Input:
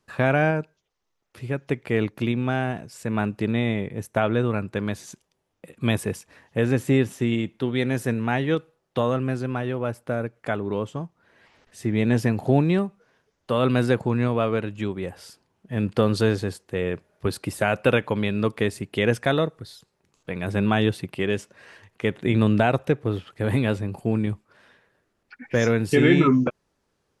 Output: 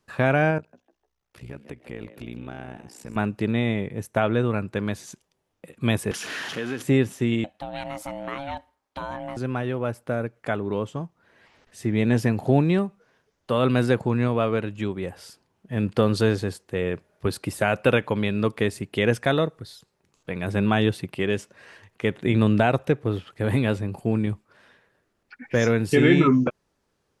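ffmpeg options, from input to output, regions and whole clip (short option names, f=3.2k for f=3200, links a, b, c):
-filter_complex "[0:a]asettb=1/sr,asplit=3[a][b][c];[a]atrim=end=0.584[d];[b]atrim=start=0.58:end=3.16,asetpts=PTS-STARTPTS,afade=t=in:d=0.004:c=qsin,afade=t=out:st=2.576:d=0.004:c=qsin,acompressor=threshold=-33dB:ratio=2.5:attack=3.2:release=140:knee=1:detection=peak,tremolo=f=60:d=0.889,asplit=4[e][f][g][h];[f]adelay=151,afreqshift=93,volume=-13dB[i];[g]adelay=302,afreqshift=186,volume=-23.5dB[j];[h]adelay=453,afreqshift=279,volume=-33.9dB[k];[e][i][j][k]amix=inputs=4:normalize=0,atrim=end_sample=113778[l];[c]atrim=start=3.156[m];[d][l]acrossfade=d=0.004:c1=hsin:c2=qsin[n];[n][m]acrossfade=d=0.004:c1=qsin:c2=hsin,asettb=1/sr,asplit=3[o][p][q];[o]atrim=end=6.114[r];[p]atrim=start=6.11:end=6.82,asetpts=PTS-STARTPTS,afade=t=in:d=0.004:c=qsin,afade=t=out:st=0.706:d=0.004:c=qsin,aeval=exprs='val(0)+0.5*0.0398*sgn(val(0))':c=same,acompressor=threshold=-21dB:ratio=6:attack=3.2:release=140:knee=1:detection=peak,highpass=240,equalizer=f=540:t=q:w=4:g=-7,equalizer=f=890:t=q:w=4:g=-5,equalizer=f=1.5k:t=q:w=4:g=6,equalizer=f=3.1k:t=q:w=4:g=7,equalizer=f=8.2k:t=q:w=4:g=-10,lowpass=f=10k:w=0.5412,lowpass=f=10k:w=1.3066[s];[q]atrim=start=6.816[t];[r][s]acrossfade=d=0.004:c1=hsin:c2=qsin[u];[u][t]acrossfade=d=0.004:c1=qsin:c2=hsin,asettb=1/sr,asplit=3[v][w][x];[v]atrim=end=7.444[y];[w]atrim=start=7.44:end=9.37,asetpts=PTS-STARTPTS,afade=t=in:d=0.004:c=qsin,afade=t=out:st=1.926:d=0.004:c=qsin,acompressor=threshold=-26dB:ratio=2:attack=3.2:release=140:knee=1:detection=peak,aeval=exprs='val(0)*sin(2*PI*420*n/s)':c=same,lowshelf=f=190:g=-10.5[z];[x]atrim=start=9.366[aa];[y][z]acrossfade=d=0.004:c1=hsin:c2=qsin[ab];[ab][aa]acrossfade=d=0.004:c1=qsin:c2=hsin"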